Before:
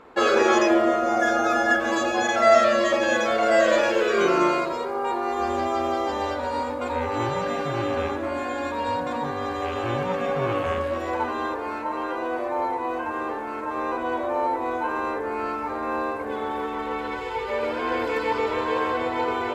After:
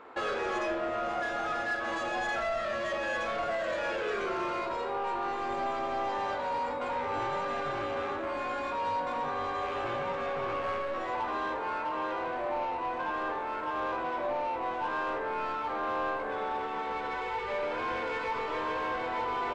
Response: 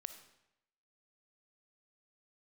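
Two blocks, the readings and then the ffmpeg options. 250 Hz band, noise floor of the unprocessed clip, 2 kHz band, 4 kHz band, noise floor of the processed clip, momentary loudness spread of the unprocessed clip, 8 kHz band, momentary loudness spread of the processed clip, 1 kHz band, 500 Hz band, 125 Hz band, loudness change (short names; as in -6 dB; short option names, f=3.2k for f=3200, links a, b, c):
-13.5 dB, -31 dBFS, -7.5 dB, -9.0 dB, -35 dBFS, 10 LU, under -10 dB, 2 LU, -6.5 dB, -10.5 dB, -12.5 dB, -8.5 dB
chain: -filter_complex "[0:a]acompressor=threshold=-23dB:ratio=4,asplit=2[a][b];[b]highpass=f=720:p=1,volume=18dB,asoftclip=type=tanh:threshold=-14.5dB[c];[a][c]amix=inputs=2:normalize=0,lowpass=f=2.1k:p=1,volume=-6dB,asplit=2[d][e];[e]adelay=19,volume=-12dB[f];[d][f]amix=inputs=2:normalize=0[g];[1:a]atrim=start_sample=2205,asetrate=88200,aresample=44100[h];[g][h]afir=irnorm=-1:irlink=0,aresample=22050,aresample=44100"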